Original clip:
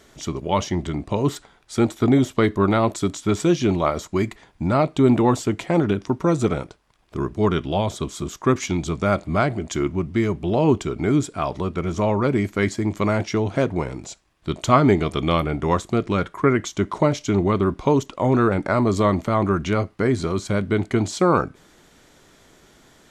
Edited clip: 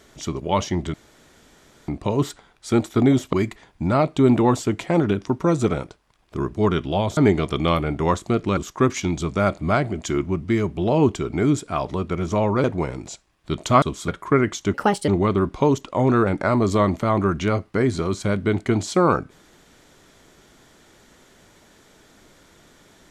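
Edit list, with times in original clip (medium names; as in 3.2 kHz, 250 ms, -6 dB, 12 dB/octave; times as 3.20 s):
0.94 s: insert room tone 0.94 s
2.39–4.13 s: delete
7.97–8.23 s: swap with 14.80–16.20 s
12.30–13.62 s: delete
16.86–17.33 s: speed 138%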